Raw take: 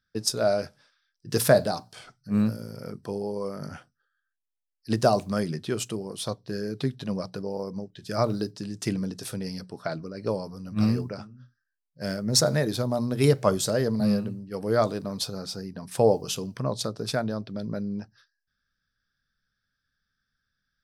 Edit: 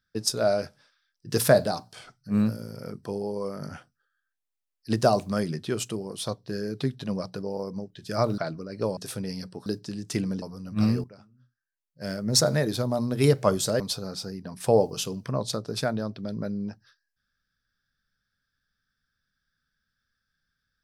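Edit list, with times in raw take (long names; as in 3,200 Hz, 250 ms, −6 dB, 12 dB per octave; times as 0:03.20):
0:08.38–0:09.14: swap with 0:09.83–0:10.42
0:11.04–0:12.27: fade in quadratic, from −14 dB
0:13.80–0:15.11: remove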